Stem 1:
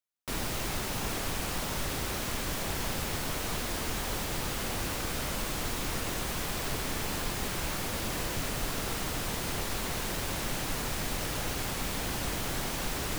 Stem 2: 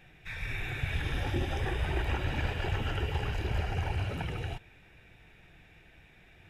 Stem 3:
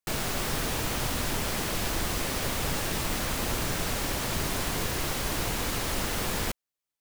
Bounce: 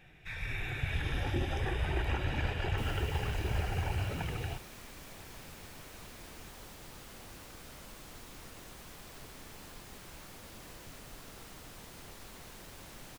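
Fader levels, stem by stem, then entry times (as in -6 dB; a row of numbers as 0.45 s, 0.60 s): -16.5 dB, -1.5 dB, mute; 2.50 s, 0.00 s, mute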